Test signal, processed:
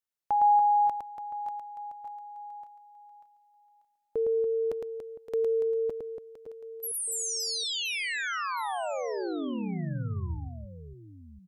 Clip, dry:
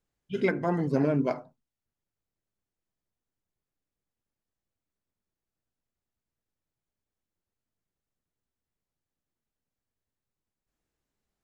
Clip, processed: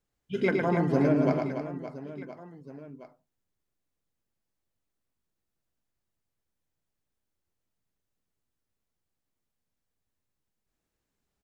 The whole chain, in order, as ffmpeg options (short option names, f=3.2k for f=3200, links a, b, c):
-af "aecho=1:1:110|286|567.6|1018|1739:0.631|0.398|0.251|0.158|0.1"